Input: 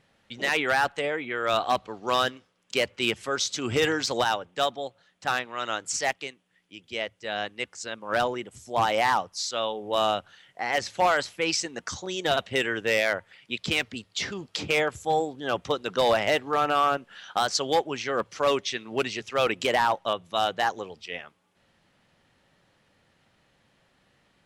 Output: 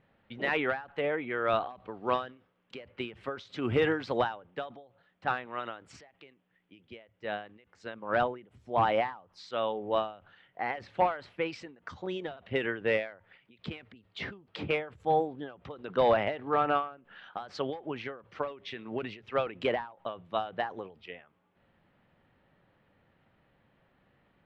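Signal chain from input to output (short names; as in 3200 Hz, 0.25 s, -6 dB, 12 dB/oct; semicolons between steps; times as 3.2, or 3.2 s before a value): air absorption 470 m; ending taper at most 140 dB/s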